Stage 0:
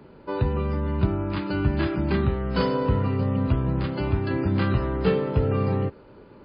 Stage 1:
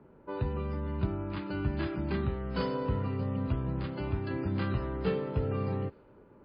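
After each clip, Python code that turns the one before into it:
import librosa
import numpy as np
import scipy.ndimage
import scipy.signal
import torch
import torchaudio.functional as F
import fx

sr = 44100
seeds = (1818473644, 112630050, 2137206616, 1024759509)

y = fx.env_lowpass(x, sr, base_hz=1600.0, full_db=-17.0)
y = y * librosa.db_to_amplitude(-8.5)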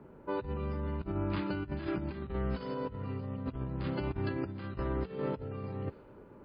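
y = fx.over_compress(x, sr, threshold_db=-35.0, ratio=-0.5)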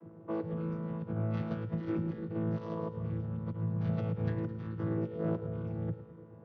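y = fx.chord_vocoder(x, sr, chord='bare fifth', root=45)
y = fx.echo_feedback(y, sr, ms=107, feedback_pct=58, wet_db=-13.0)
y = y * librosa.db_to_amplitude(3.5)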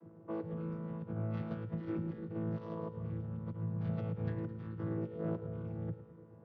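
y = fx.air_absorb(x, sr, metres=80.0)
y = y * librosa.db_to_amplitude(-4.0)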